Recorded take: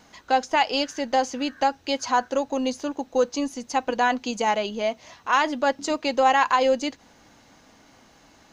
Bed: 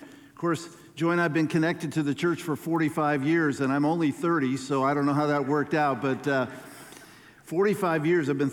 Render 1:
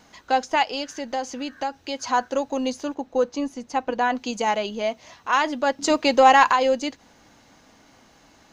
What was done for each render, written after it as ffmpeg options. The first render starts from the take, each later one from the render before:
-filter_complex "[0:a]asplit=3[a][b][c];[a]afade=t=out:st=0.63:d=0.02[d];[b]acompressor=threshold=-32dB:ratio=1.5:attack=3.2:release=140:knee=1:detection=peak,afade=t=in:st=0.63:d=0.02,afade=t=out:st=2.03:d=0.02[e];[c]afade=t=in:st=2.03:d=0.02[f];[d][e][f]amix=inputs=3:normalize=0,asettb=1/sr,asplit=3[g][h][i];[g]atrim=end=2.944[j];[h]atrim=start=2.94:end=4.15,asetpts=PTS-STARTPTS,afade=t=in:d=0.004:c=qsin,afade=t=out:st=1.206:d=0.004:c=qsin,highshelf=f=3.3k:g=-9[k];[i]atrim=start=4.146[l];[j][k]acrossfade=d=0.004:c1=hsin:c2=qsin[m];[m][l]acrossfade=d=0.004:c1=qsin:c2=hsin,asettb=1/sr,asplit=3[n][o][p];[n]atrim=end=5.824[q];[o]atrim=start=5.82:end=6.53,asetpts=PTS-STARTPTS,afade=t=in:d=0.004:c=qsin,afade=t=out:st=0.706:d=0.004:c=qsin,acontrast=41[r];[p]atrim=start=6.526[s];[q][r]acrossfade=d=0.004:c1=hsin:c2=qsin[t];[t][s]acrossfade=d=0.004:c1=qsin:c2=hsin"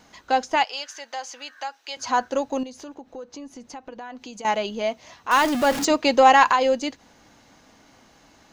-filter_complex "[0:a]asettb=1/sr,asplit=3[a][b][c];[a]atrim=end=0.644[d];[b]atrim=start=0.64:end=1.97,asetpts=PTS-STARTPTS,afade=t=in:d=0.004:c=qsin,afade=t=out:st=1.326:d=0.004:c=qsin,highpass=890[e];[c]atrim=start=1.966[f];[d][e]acrossfade=d=0.004:c1=hsin:c2=qsin[g];[g][f]acrossfade=d=0.004:c1=qsin:c2=hsin,asettb=1/sr,asplit=3[h][i][j];[h]atrim=end=2.634[k];[i]atrim=start=2.63:end=4.45,asetpts=PTS-STARTPTS,afade=t=in:d=0.004:c=qsin,afade=t=out:st=1.816:d=0.004:c=qsin,acompressor=threshold=-37dB:ratio=4:attack=3.2:release=140:knee=1:detection=peak[l];[j]atrim=start=4.446[m];[k][l]acrossfade=d=0.004:c1=hsin:c2=qsin[n];[n][m]acrossfade=d=0.004:c1=qsin:c2=hsin,asettb=1/sr,asplit=3[o][p][q];[o]atrim=end=5.314[r];[p]atrim=start=5.31:end=5.85,asetpts=PTS-STARTPTS,afade=t=in:d=0.004:c=qsin,afade=t=out:st=0.536:d=0.004:c=qsin,aeval=exprs='val(0)+0.5*0.075*sgn(val(0))':c=same[s];[q]atrim=start=5.846[t];[r][s]acrossfade=d=0.004:c1=hsin:c2=qsin[u];[u][t]acrossfade=d=0.004:c1=qsin:c2=hsin"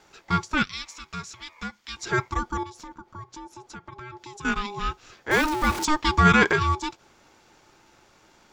-af "aeval=exprs='val(0)*sin(2*PI*610*n/s)':c=same"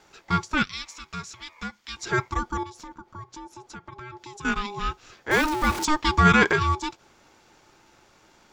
-af anull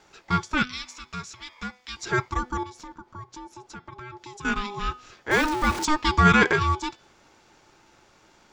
-af "equalizer=f=13k:t=o:w=0.5:g=-7,bandreject=f=249.7:t=h:w=4,bandreject=f=499.4:t=h:w=4,bandreject=f=749.1:t=h:w=4,bandreject=f=998.8:t=h:w=4,bandreject=f=1.2485k:t=h:w=4,bandreject=f=1.4982k:t=h:w=4,bandreject=f=1.7479k:t=h:w=4,bandreject=f=1.9976k:t=h:w=4,bandreject=f=2.2473k:t=h:w=4,bandreject=f=2.497k:t=h:w=4,bandreject=f=2.7467k:t=h:w=4,bandreject=f=2.9964k:t=h:w=4,bandreject=f=3.2461k:t=h:w=4,bandreject=f=3.4958k:t=h:w=4,bandreject=f=3.7455k:t=h:w=4,bandreject=f=3.9952k:t=h:w=4,bandreject=f=4.2449k:t=h:w=4,bandreject=f=4.4946k:t=h:w=4,bandreject=f=4.7443k:t=h:w=4,bandreject=f=4.994k:t=h:w=4,bandreject=f=5.2437k:t=h:w=4"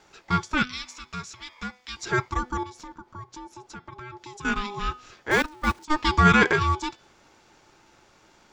-filter_complex "[0:a]asettb=1/sr,asplit=3[a][b][c];[a]atrim=end=5.424[d];[b]atrim=start=5.42:end=5.94,asetpts=PTS-STARTPTS,afade=t=in:d=0.004:c=qsin,afade=t=out:st=0.516:d=0.004:c=qsin,agate=range=-20dB:threshold=-22dB:ratio=16:release=100:detection=peak[e];[c]atrim=start=5.936[f];[d][e]acrossfade=d=0.004:c1=hsin:c2=qsin[g];[g][f]acrossfade=d=0.004:c1=qsin:c2=hsin"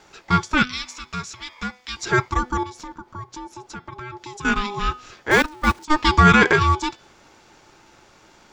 -af "volume=5.5dB,alimiter=limit=-2dB:level=0:latency=1"

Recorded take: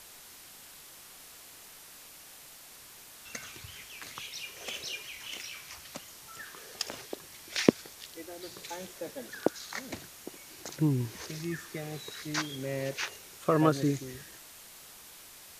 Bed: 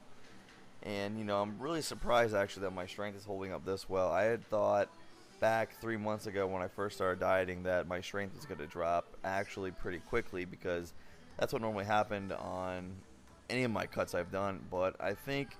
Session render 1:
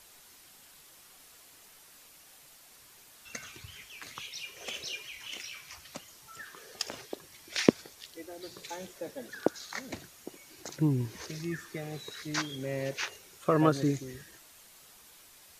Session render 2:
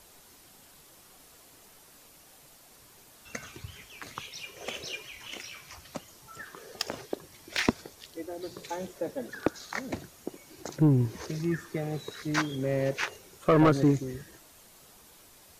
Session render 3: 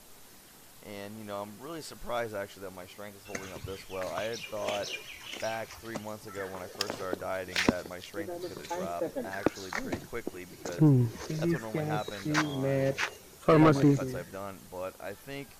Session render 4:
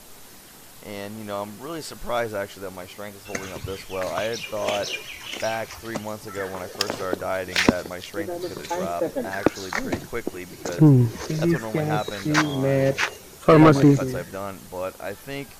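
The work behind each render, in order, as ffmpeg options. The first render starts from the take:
-af "afftdn=nr=6:nf=-51"
-filter_complex "[0:a]asplit=2[a][b];[b]adynamicsmooth=sensitivity=4:basefreq=1.2k,volume=2dB[c];[a][c]amix=inputs=2:normalize=0,asoftclip=type=tanh:threshold=-13.5dB"
-filter_complex "[1:a]volume=-4dB[a];[0:a][a]amix=inputs=2:normalize=0"
-af "volume=8dB"

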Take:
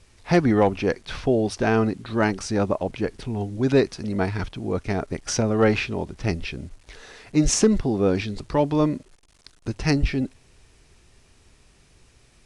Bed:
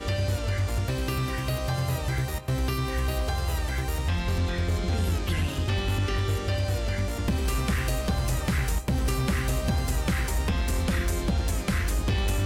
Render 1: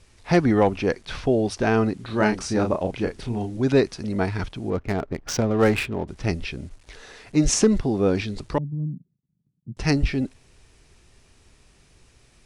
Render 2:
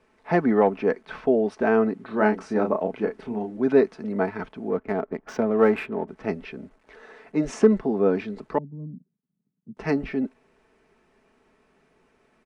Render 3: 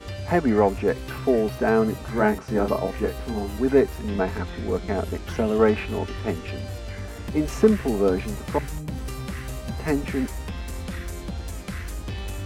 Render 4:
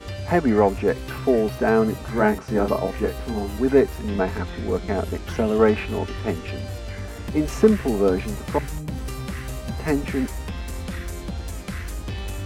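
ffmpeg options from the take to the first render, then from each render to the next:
-filter_complex "[0:a]asettb=1/sr,asplit=3[a][b][c];[a]atrim=end=1.964[d];[b]atrim=start=1.96:end=3.57,asetpts=PTS-STARTPTS,afade=t=in:d=0.004:c=qsin,afade=t=out:st=1.606:d=0.004:c=qsin,asplit=2[e][f];[f]adelay=33,volume=-5.5dB[g];[e][g]amix=inputs=2:normalize=0,atrim=end_sample=71001[h];[c]atrim=start=3.566[i];[d][h]acrossfade=d=0.004:c1=hsin:c2=qsin[j];[j][i]acrossfade=d=0.004:c1=qsin:c2=hsin,asettb=1/sr,asplit=3[k][l][m];[k]atrim=end=4.704[n];[l]atrim=start=4.7:end=6.08,asetpts=PTS-STARTPTS,afade=t=in:d=0.004:c=qsin,afade=t=out:st=1.376:d=0.004:c=qsin,adynamicsmooth=sensitivity=5.5:basefreq=1.2k[o];[m]atrim=start=6.076[p];[n][o]acrossfade=d=0.004:c1=hsin:c2=qsin[q];[q][p]acrossfade=d=0.004:c1=qsin:c2=hsin,asettb=1/sr,asplit=3[r][s][t];[r]atrim=end=8.584[u];[s]atrim=start=8.58:end=9.77,asetpts=PTS-STARTPTS,afade=t=in:d=0.004:c=qsin,afade=t=out:st=1.186:d=0.004:c=qsin,asuperpass=centerf=160:order=4:qfactor=2.1[v];[t]atrim=start=9.766[w];[u][v]acrossfade=d=0.004:c1=hsin:c2=qsin[x];[x][w]acrossfade=d=0.004:c1=qsin:c2=hsin"
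-filter_complex "[0:a]acrossover=split=190 2100:gain=0.0891 1 0.1[a][b][c];[a][b][c]amix=inputs=3:normalize=0,aecho=1:1:4.6:0.43"
-filter_complex "[1:a]volume=-6.5dB[a];[0:a][a]amix=inputs=2:normalize=0"
-af "volume=1.5dB"

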